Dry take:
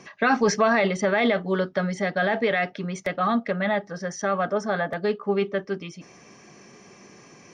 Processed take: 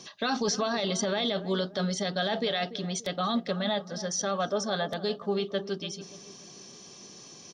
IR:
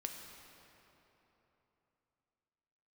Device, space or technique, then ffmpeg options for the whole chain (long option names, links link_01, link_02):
over-bright horn tweeter: -filter_complex "[0:a]highshelf=frequency=2800:width_type=q:width=3:gain=8.5,alimiter=limit=-16dB:level=0:latency=1:release=22,asplit=2[link_01][link_02];[link_02]adelay=290,lowpass=frequency=950:poles=1,volume=-13dB,asplit=2[link_03][link_04];[link_04]adelay=290,lowpass=frequency=950:poles=1,volume=0.45,asplit=2[link_05][link_06];[link_06]adelay=290,lowpass=frequency=950:poles=1,volume=0.45,asplit=2[link_07][link_08];[link_08]adelay=290,lowpass=frequency=950:poles=1,volume=0.45[link_09];[link_01][link_03][link_05][link_07][link_09]amix=inputs=5:normalize=0,volume=-3.5dB"